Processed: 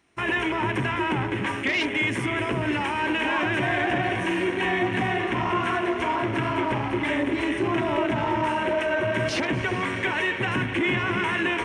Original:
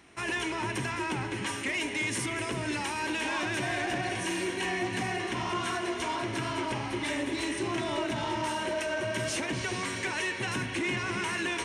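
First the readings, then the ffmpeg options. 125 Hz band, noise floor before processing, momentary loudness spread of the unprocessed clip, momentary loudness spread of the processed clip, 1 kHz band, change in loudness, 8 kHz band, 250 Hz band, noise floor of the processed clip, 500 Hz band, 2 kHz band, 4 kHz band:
+7.5 dB, -36 dBFS, 2 LU, 2 LU, +7.5 dB, +6.5 dB, -7.5 dB, +7.5 dB, -29 dBFS, +7.5 dB, +6.5 dB, +2.5 dB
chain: -af "afwtdn=0.0141,volume=7.5dB"

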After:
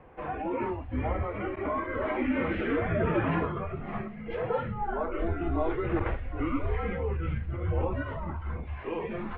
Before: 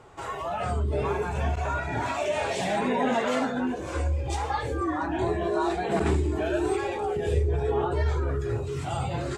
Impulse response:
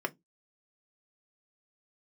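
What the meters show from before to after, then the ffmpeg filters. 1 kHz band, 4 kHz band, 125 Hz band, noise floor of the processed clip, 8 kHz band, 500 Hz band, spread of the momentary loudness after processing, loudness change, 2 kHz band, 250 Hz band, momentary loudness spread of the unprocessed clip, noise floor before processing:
-5.0 dB, -12.0 dB, -4.0 dB, -40 dBFS, under -35 dB, -4.5 dB, 8 LU, -4.0 dB, -3.0 dB, -1.5 dB, 5 LU, -34 dBFS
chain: -af "equalizer=f=120:w=1.9:g=-13.5,acrusher=bits=7:mode=log:mix=0:aa=0.000001,highpass=f=350:t=q:w=0.5412,highpass=f=350:t=q:w=1.307,lowpass=f=2.9k:t=q:w=0.5176,lowpass=f=2.9k:t=q:w=0.7071,lowpass=f=2.9k:t=q:w=1.932,afreqshift=-340"

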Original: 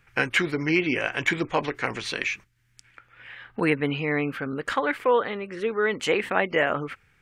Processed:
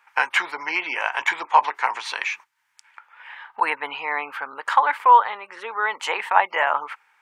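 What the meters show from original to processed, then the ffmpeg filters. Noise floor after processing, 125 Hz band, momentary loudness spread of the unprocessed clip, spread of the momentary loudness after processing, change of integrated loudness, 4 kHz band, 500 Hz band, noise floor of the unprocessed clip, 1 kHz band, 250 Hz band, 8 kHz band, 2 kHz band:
-66 dBFS, under -30 dB, 8 LU, 15 LU, +3.5 dB, +0.5 dB, -7.0 dB, -63 dBFS, +12.0 dB, -18.0 dB, n/a, +2.5 dB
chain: -af "highpass=f=910:t=q:w=7"

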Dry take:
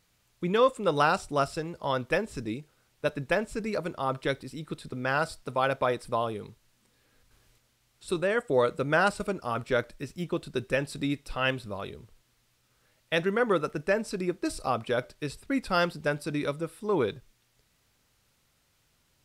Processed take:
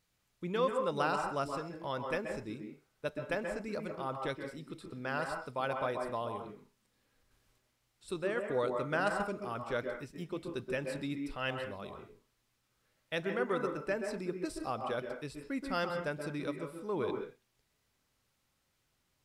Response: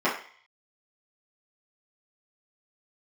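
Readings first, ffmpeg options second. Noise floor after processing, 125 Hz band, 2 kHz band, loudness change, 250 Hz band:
-78 dBFS, -8.5 dB, -8.0 dB, -7.5 dB, -7.0 dB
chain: -filter_complex "[0:a]asplit=2[a][b];[1:a]atrim=start_sample=2205,atrim=end_sample=6174,adelay=125[c];[b][c]afir=irnorm=-1:irlink=0,volume=-19dB[d];[a][d]amix=inputs=2:normalize=0,volume=-9dB"

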